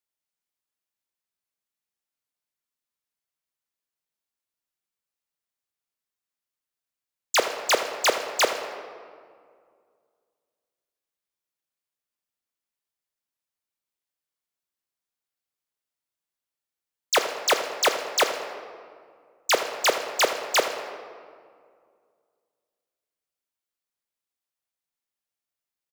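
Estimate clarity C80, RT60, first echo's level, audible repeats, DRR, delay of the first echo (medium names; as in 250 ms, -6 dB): 8.5 dB, 2.1 s, -13.5 dB, 1, 5.0 dB, 79 ms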